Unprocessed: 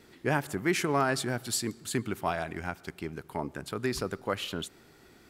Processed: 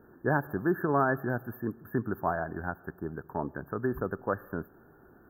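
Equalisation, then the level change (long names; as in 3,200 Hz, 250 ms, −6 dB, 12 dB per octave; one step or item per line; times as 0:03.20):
linear-phase brick-wall band-stop 1,800–13,000 Hz
+1.0 dB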